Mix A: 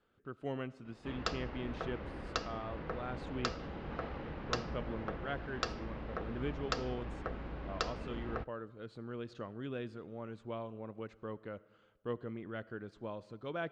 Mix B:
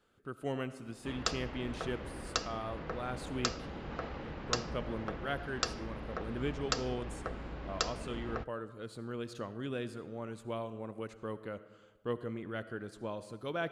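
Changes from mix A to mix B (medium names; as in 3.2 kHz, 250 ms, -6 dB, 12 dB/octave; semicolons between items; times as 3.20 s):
speech: send +9.0 dB; master: remove distance through air 150 m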